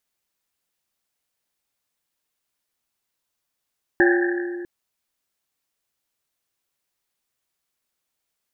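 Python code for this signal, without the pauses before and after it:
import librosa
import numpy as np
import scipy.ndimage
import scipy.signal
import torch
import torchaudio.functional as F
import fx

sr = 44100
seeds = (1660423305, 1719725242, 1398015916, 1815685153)

y = fx.risset_drum(sr, seeds[0], length_s=0.65, hz=350.0, decay_s=2.57, noise_hz=1700.0, noise_width_hz=260.0, noise_pct=35)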